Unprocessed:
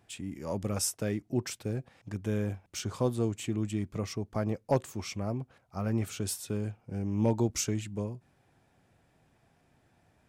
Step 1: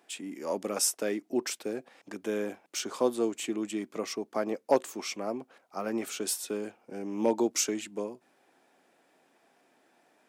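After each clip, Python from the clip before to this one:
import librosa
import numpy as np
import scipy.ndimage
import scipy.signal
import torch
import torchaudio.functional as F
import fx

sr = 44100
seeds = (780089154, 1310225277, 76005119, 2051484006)

y = scipy.signal.sosfilt(scipy.signal.butter(4, 270.0, 'highpass', fs=sr, output='sos'), x)
y = y * librosa.db_to_amplitude(4.0)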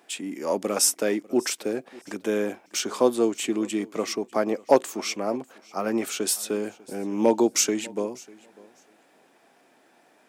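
y = fx.echo_feedback(x, sr, ms=596, feedback_pct=17, wet_db=-23)
y = y * librosa.db_to_amplitude(6.5)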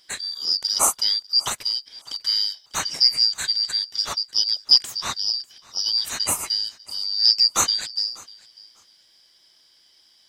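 y = fx.band_shuffle(x, sr, order='4321')
y = y * librosa.db_to_amplitude(2.5)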